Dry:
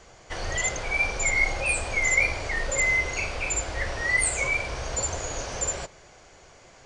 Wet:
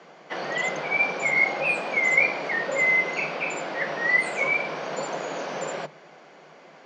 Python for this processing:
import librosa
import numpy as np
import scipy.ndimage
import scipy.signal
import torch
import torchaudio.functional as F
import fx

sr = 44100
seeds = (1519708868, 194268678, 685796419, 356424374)

y = scipy.signal.sosfilt(scipy.signal.cheby1(8, 1.0, 150.0, 'highpass', fs=sr, output='sos'), x)
y = fx.air_absorb(y, sr, metres=220.0)
y = y * librosa.db_to_amplitude(5.5)